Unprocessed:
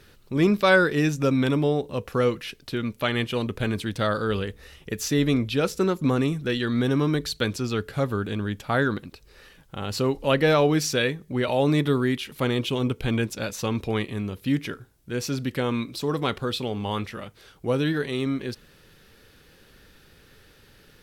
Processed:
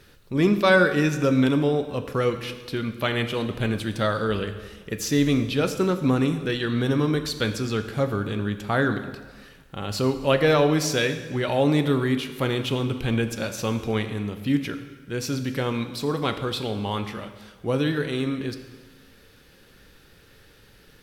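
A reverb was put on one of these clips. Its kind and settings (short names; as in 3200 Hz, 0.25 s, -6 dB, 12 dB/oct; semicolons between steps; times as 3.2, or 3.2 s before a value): plate-style reverb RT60 1.4 s, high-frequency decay 0.9×, DRR 8 dB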